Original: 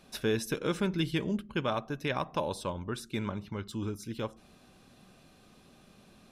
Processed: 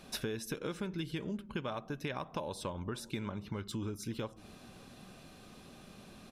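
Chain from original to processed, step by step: compression 6:1, threshold -40 dBFS, peak gain reduction 15 dB; echo from a far wall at 99 m, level -23 dB; trim +4.5 dB

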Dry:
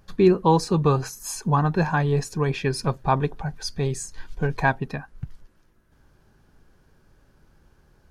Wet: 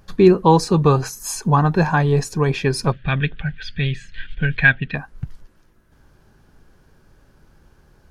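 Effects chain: 2.92–4.95 s: FFT filter 180 Hz 0 dB, 400 Hz -11 dB, 580 Hz -8 dB, 950 Hz -20 dB, 1.6 kHz +7 dB, 3.3 kHz +11 dB, 5.3 kHz -16 dB, 8.8 kHz -28 dB; trim +5 dB

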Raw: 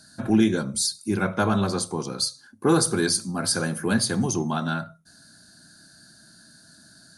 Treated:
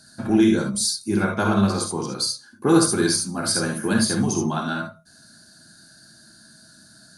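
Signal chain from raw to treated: gated-style reverb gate 90 ms rising, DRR 2 dB

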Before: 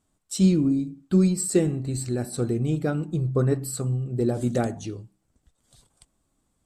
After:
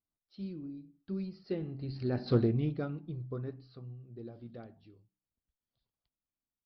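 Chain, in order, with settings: Doppler pass-by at 2.33 s, 10 m/s, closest 1.5 m; resampled via 11.025 kHz; loudspeaker Doppler distortion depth 0.17 ms

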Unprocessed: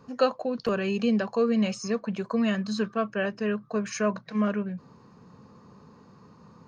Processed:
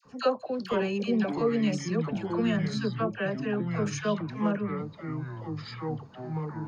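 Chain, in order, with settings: phase dispersion lows, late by 54 ms, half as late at 1.1 kHz; ever faster or slower copies 415 ms, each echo -5 st, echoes 2, each echo -6 dB; trim -2.5 dB

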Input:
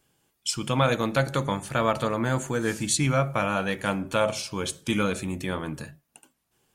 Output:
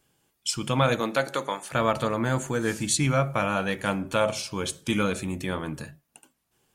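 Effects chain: 0.99–1.72 s: high-pass 200 Hz -> 550 Hz 12 dB/octave

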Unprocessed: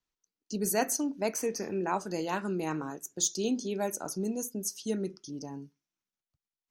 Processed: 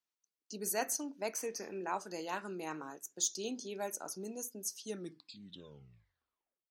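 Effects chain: tape stop on the ending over 1.84 s; high-pass 520 Hz 6 dB/octave; trim -4.5 dB

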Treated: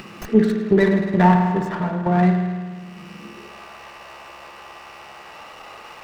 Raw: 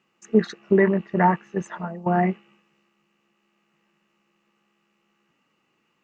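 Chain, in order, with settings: upward compressor, threshold -20 dBFS; high-pass sweep 100 Hz -> 660 Hz, 3.06–3.56 s; spring tank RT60 1.6 s, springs 50 ms, chirp 65 ms, DRR 3 dB; sliding maximum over 5 samples; trim +1 dB

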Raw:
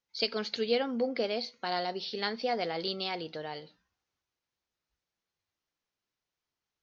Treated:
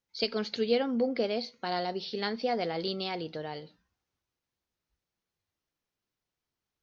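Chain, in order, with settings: bass shelf 440 Hz +7 dB; trim -1.5 dB

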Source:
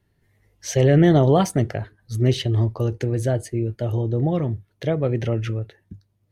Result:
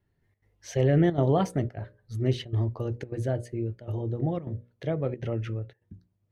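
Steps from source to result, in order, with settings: treble shelf 4 kHz -10 dB; hum notches 60/120/180/240/300/360/420/480/540/600 Hz; trance gate "xxxx.xxxxxxxx.xx" 178 bpm -12 dB; trim -6 dB

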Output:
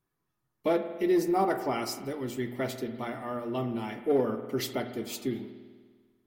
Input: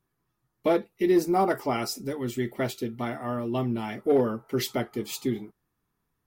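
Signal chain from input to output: hum notches 60/120/180/240 Hz; spring tank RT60 1.6 s, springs 49 ms, chirp 40 ms, DRR 9 dB; trim -3.5 dB

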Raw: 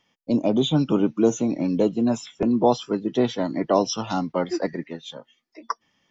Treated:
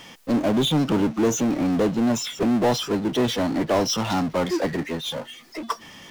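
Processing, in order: power-law waveshaper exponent 0.5; trim -6.5 dB

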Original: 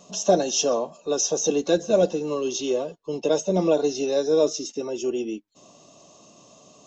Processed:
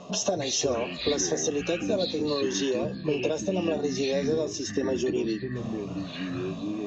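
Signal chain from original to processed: level-controlled noise filter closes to 2.9 kHz, open at -16.5 dBFS; compression 12:1, threshold -33 dBFS, peak gain reduction 20 dB; ever faster or slower copies 218 ms, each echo -7 st, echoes 3, each echo -6 dB; trim +8.5 dB

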